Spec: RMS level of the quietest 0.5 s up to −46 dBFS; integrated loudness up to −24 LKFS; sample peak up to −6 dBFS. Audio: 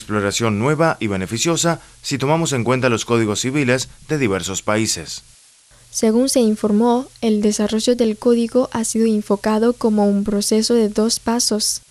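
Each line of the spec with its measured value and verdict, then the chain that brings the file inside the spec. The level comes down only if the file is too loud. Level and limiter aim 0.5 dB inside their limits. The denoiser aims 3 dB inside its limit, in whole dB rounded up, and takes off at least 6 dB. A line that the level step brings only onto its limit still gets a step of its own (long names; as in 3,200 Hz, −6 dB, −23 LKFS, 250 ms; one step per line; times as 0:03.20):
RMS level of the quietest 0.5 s −49 dBFS: in spec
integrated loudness −18.0 LKFS: out of spec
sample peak −4.0 dBFS: out of spec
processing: level −6.5 dB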